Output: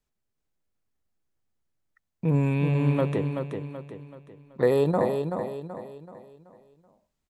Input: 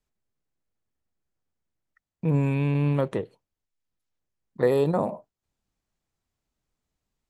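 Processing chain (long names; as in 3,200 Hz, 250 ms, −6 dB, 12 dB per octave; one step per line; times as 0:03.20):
repeating echo 380 ms, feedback 41%, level −6 dB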